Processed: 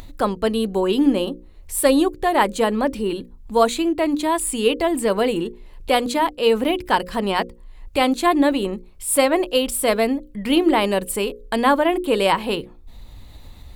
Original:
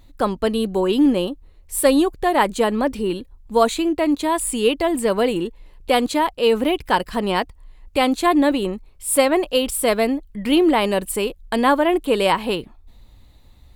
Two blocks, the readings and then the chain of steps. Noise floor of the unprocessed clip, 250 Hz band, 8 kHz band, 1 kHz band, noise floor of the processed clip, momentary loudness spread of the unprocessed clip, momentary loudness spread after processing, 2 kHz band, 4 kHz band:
−49 dBFS, −1.0 dB, 0.0 dB, 0.0 dB, −44 dBFS, 9 LU, 9 LU, 0.0 dB, 0.0 dB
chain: upward compression, threshold −29 dBFS
mains-hum notches 60/120/180/240/300/360/420/480/540 Hz

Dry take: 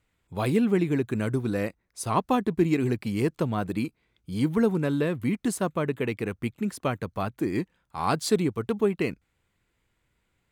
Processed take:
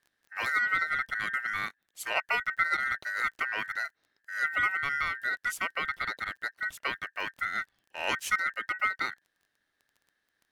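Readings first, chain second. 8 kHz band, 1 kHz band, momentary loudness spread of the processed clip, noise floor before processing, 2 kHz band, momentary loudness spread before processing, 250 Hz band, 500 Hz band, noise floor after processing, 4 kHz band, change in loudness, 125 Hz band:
−5.0 dB, −0.5 dB, 8 LU, −75 dBFS, +11.0 dB, 8 LU, −27.0 dB, −18.0 dB, −80 dBFS, +1.5 dB, −3.0 dB, −26.0 dB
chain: ring modulation 1,700 Hz
surface crackle 19 per second −45 dBFS
level −2.5 dB

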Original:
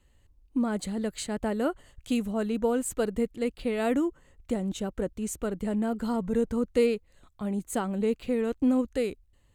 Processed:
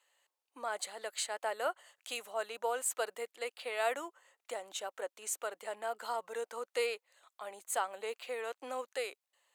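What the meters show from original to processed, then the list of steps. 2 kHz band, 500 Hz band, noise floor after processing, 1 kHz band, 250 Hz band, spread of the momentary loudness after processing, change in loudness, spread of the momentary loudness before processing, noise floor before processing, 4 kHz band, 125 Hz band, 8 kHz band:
0.0 dB, −9.0 dB, below −85 dBFS, −0.5 dB, −31.0 dB, 9 LU, −9.0 dB, 7 LU, −64 dBFS, 0.0 dB, below −35 dB, 0.0 dB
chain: high-pass filter 630 Hz 24 dB per octave

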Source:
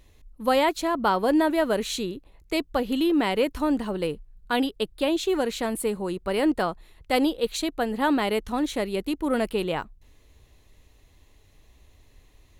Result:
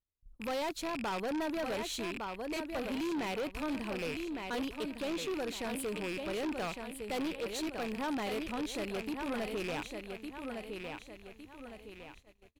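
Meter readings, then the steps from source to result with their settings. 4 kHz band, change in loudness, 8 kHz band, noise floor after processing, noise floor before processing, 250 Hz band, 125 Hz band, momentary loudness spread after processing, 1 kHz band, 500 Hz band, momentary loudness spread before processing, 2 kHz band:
−9.5 dB, −11.5 dB, −8.0 dB, −60 dBFS, −58 dBFS, −11.5 dB, −9.0 dB, 10 LU, −12.0 dB, −11.5 dB, 8 LU, −8.5 dB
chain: loose part that buzzes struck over −44 dBFS, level −18 dBFS
parametric band 100 Hz +2.5 dB 0.54 octaves
repeating echo 1,158 ms, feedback 37%, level −9 dB
noise gate −48 dBFS, range −34 dB
soft clipping −25 dBFS, distortion −8 dB
level −7 dB

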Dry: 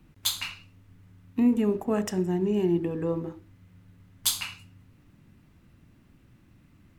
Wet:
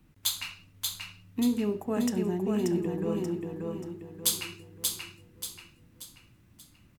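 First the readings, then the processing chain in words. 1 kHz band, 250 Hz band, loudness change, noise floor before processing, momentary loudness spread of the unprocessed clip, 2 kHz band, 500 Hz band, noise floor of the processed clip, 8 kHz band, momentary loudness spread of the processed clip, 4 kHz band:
−2.5 dB, −2.5 dB, −4.0 dB, −59 dBFS, 12 LU, −2.0 dB, −3.0 dB, −60 dBFS, +1.5 dB, 14 LU, −1.0 dB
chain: high-shelf EQ 5,900 Hz +6 dB
repeating echo 583 ms, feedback 40%, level −3.5 dB
level −4.5 dB

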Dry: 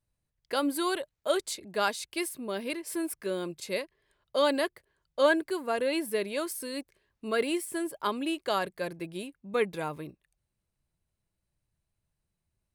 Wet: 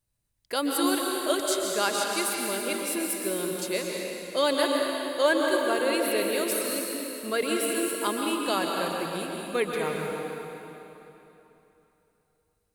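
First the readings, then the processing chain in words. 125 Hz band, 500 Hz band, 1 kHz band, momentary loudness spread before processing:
+3.5 dB, +3.5 dB, +4.0 dB, 11 LU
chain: high-shelf EQ 4,500 Hz +8 dB
dense smooth reverb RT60 3.2 s, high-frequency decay 0.85×, pre-delay 110 ms, DRR −0.5 dB

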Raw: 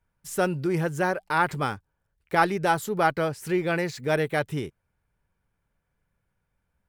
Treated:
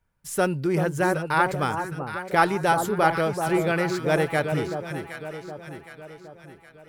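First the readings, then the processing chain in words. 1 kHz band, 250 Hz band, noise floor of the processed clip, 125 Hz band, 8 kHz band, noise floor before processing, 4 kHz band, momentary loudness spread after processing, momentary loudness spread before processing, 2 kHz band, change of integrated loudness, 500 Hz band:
+2.5 dB, +2.5 dB, −53 dBFS, +3.0 dB, +3.0 dB, −78 dBFS, +2.0 dB, 17 LU, 8 LU, +2.0 dB, +2.0 dB, +2.5 dB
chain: dynamic equaliser 9,900 Hz, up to +5 dB, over −58 dBFS, Q 7
delay that swaps between a low-pass and a high-pass 383 ms, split 1,100 Hz, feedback 67%, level −6 dB
level +1.5 dB

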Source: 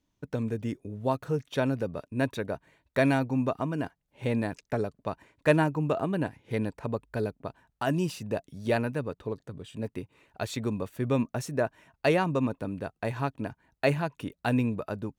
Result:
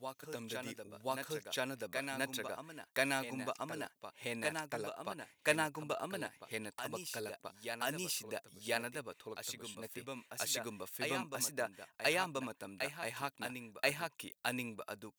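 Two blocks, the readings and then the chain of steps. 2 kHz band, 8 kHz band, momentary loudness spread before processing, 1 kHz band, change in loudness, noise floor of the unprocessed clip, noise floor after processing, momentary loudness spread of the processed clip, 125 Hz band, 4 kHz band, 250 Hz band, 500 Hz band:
−3.0 dB, +6.0 dB, 12 LU, −8.0 dB, −9.5 dB, −79 dBFS, −73 dBFS, 11 LU, −20.0 dB, +1.5 dB, −16.0 dB, −11.0 dB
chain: spectral tilt +4.5 dB per octave
backwards echo 1,031 ms −6.5 dB
level −8 dB

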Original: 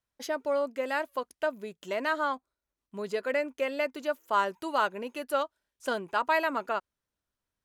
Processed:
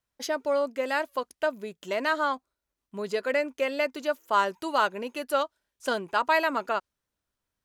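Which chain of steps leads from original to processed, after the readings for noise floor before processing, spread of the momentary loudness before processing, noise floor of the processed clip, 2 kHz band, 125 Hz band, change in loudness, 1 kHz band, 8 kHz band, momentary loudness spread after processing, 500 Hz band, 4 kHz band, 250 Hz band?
below −85 dBFS, 10 LU, below −85 dBFS, +3.0 dB, can't be measured, +2.5 dB, +2.5 dB, +4.5 dB, 10 LU, +2.5 dB, +4.5 dB, +2.5 dB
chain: dynamic equaliser 5,200 Hz, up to +4 dB, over −51 dBFS, Q 1
level +2.5 dB

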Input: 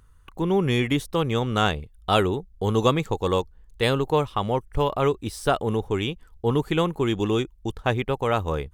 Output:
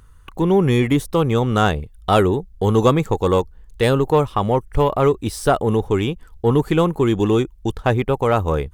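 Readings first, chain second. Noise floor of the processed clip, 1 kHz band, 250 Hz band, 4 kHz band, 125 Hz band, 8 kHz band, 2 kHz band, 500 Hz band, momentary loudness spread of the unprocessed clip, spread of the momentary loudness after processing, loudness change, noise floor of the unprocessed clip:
−46 dBFS, +5.0 dB, +6.5 dB, −0.5 dB, +6.5 dB, +5.0 dB, +2.5 dB, +6.0 dB, 6 LU, 5 LU, +6.0 dB, −53 dBFS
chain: dynamic equaliser 3,500 Hz, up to −7 dB, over −40 dBFS, Q 0.72
in parallel at −5 dB: soft clipping −18.5 dBFS, distortion −13 dB
on the sum: level +3.5 dB

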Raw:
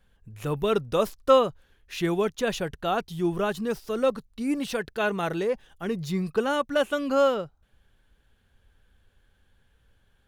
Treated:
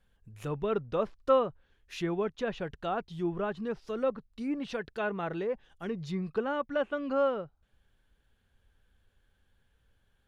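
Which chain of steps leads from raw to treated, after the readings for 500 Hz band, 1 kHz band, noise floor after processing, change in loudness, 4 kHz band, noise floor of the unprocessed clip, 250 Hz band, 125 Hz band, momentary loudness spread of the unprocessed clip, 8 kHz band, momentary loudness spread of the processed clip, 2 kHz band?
−6.0 dB, −6.5 dB, −72 dBFS, −6.0 dB, −11.5 dB, −66 dBFS, −6.0 dB, −6.0 dB, 10 LU, below −10 dB, 10 LU, −7.0 dB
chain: treble cut that deepens with the level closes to 2,100 Hz, closed at −23 dBFS
level −6 dB

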